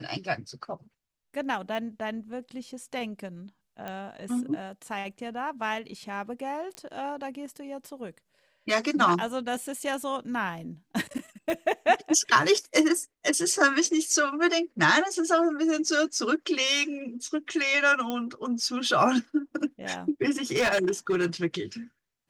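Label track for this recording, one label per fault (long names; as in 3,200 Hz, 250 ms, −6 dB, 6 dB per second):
1.750000	1.750000	click −23 dBFS
3.880000	3.880000	click −22 dBFS
6.750000	6.750000	click −23 dBFS
11.500000	11.500000	click −18 dBFS
18.100000	18.100000	click −17 dBFS
20.520000	21.260000	clipping −20 dBFS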